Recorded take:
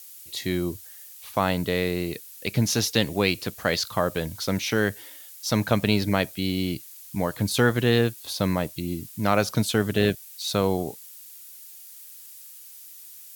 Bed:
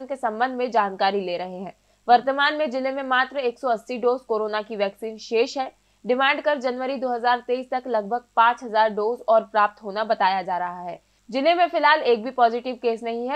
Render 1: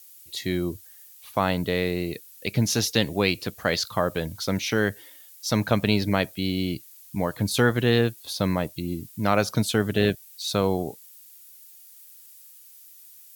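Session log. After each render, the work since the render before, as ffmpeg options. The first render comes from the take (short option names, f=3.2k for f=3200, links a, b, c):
-af "afftdn=nr=6:nf=-45"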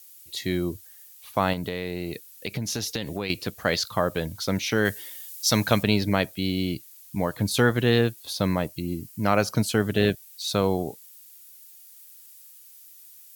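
-filter_complex "[0:a]asettb=1/sr,asplit=3[a][b][c];[a]atrim=end=1.534[d];[b]atrim=start=1.53:end=3.3,asetpts=PTS-STARTPTS,afade=t=in:d=0.004:c=qsin,afade=t=out:st=1.766:d=0.004:c=qsin,acompressor=threshold=-25dB:ratio=6:attack=3.2:release=140:knee=1:detection=peak[e];[c]atrim=start=3.296[f];[d][e]acrossfade=d=0.004:c1=hsin:c2=qsin[g];[g][f]acrossfade=d=0.004:c1=qsin:c2=hsin,asettb=1/sr,asplit=3[h][i][j];[h]atrim=end=4.854[k];[i]atrim=start=4.85:end=5.83,asetpts=PTS-STARTPTS,afade=t=in:d=0.004:c=qsin,afade=t=out:st=0.976:d=0.004:c=qsin,highshelf=f=2.1k:g=8.5[l];[j]atrim=start=5.826[m];[k][l]acrossfade=d=0.004:c1=hsin:c2=qsin[n];[n][m]acrossfade=d=0.004:c1=qsin:c2=hsin,asettb=1/sr,asplit=3[o][p][q];[o]atrim=end=8.674[r];[p]atrim=start=8.67:end=9.78,asetpts=PTS-STARTPTS,afade=t=in:d=0.004:c=qsin,afade=t=out:st=1.106:d=0.004:c=qsin,bandreject=f=3.6k:w=6.6[s];[q]atrim=start=9.776[t];[r][s]acrossfade=d=0.004:c1=hsin:c2=qsin[u];[u][t]acrossfade=d=0.004:c1=qsin:c2=hsin"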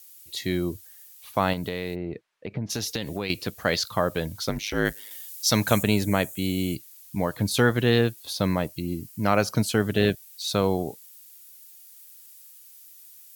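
-filter_complex "[0:a]asplit=3[a][b][c];[a]afade=t=out:st=1.94:d=0.02[d];[b]lowpass=1.4k,afade=t=in:st=1.94:d=0.02,afade=t=out:st=2.69:d=0.02[e];[c]afade=t=in:st=2.69:d=0.02[f];[d][e][f]amix=inputs=3:normalize=0,asettb=1/sr,asplit=3[g][h][i];[g]atrim=end=4.494[j];[h]atrim=start=4.49:end=5.11,asetpts=PTS-STARTPTS,afade=t=in:d=0.004:c=qsin,afade=t=out:st=0.616:d=0.004:c=qsin,aeval=exprs='val(0)*sin(2*PI*52*n/s)':c=same[k];[i]atrim=start=5.106[l];[j][k]acrossfade=d=0.004:c1=hsin:c2=qsin[m];[m][l]acrossfade=d=0.004:c1=qsin:c2=hsin,asettb=1/sr,asplit=3[n][o][p];[n]atrim=end=5.674[q];[o]atrim=start=5.67:end=6.76,asetpts=PTS-STARTPTS,afade=t=in:d=0.004:c=qsin,afade=t=out:st=1.086:d=0.004:c=qsin,highshelf=f=5.9k:t=q:w=3:g=6.5[r];[p]atrim=start=6.756[s];[q][r]acrossfade=d=0.004:c1=hsin:c2=qsin[t];[t][s]acrossfade=d=0.004:c1=qsin:c2=hsin"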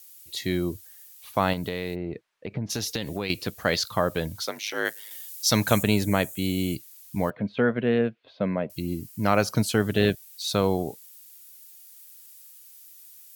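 -filter_complex "[0:a]asettb=1/sr,asplit=3[a][b][c];[a]atrim=end=4.454[d];[b]atrim=start=4.45:end=5.12,asetpts=PTS-STARTPTS,afade=t=in:d=0.004:c=qsin,afade=t=out:st=0.666:d=0.004:c=qsin,highpass=470[e];[c]atrim=start=5.116[f];[d][e]acrossfade=d=0.004:c1=hsin:c2=qsin[g];[g][f]acrossfade=d=0.004:c1=qsin:c2=hsin,asettb=1/sr,asplit=3[h][i][j];[h]atrim=end=7.304[k];[i]atrim=start=7.3:end=8.7,asetpts=PTS-STARTPTS,afade=t=in:d=0.004:c=qsin,afade=t=out:st=1.396:d=0.004:c=qsin,highpass=190,equalizer=f=220:t=q:w=4:g=4,equalizer=f=320:t=q:w=4:g=-8,equalizer=f=590:t=q:w=4:g=3,equalizer=f=860:t=q:w=4:g=-8,equalizer=f=1.2k:t=q:w=4:g=-6,equalizer=f=1.8k:t=q:w=4:g=-5,lowpass=f=2.3k:w=0.5412,lowpass=f=2.3k:w=1.3066[l];[j]atrim=start=8.696[m];[k][l]acrossfade=d=0.004:c1=hsin:c2=qsin[n];[n][m]acrossfade=d=0.004:c1=qsin:c2=hsin"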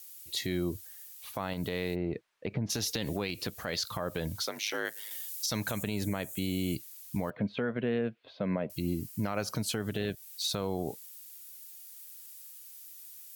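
-af "acompressor=threshold=-25dB:ratio=3,alimiter=limit=-21.5dB:level=0:latency=1:release=99"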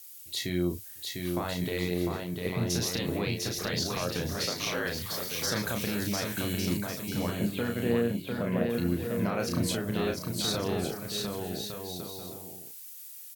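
-filter_complex "[0:a]asplit=2[a][b];[b]adelay=34,volume=-4.5dB[c];[a][c]amix=inputs=2:normalize=0,aecho=1:1:700|1155|1451|1643|1768:0.631|0.398|0.251|0.158|0.1"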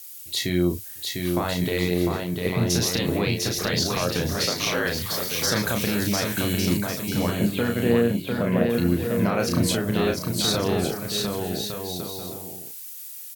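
-af "volume=7dB"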